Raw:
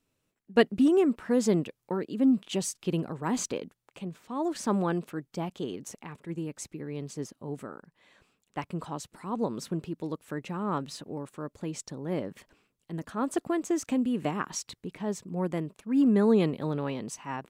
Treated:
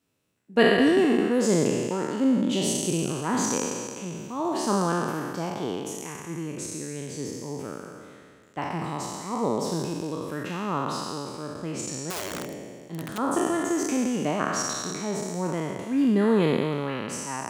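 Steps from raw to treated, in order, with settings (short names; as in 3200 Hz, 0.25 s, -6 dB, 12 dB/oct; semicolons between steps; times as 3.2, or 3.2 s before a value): spectral trails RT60 2.11 s; 12.1–13.18 wrapped overs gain 26 dB; HPF 71 Hz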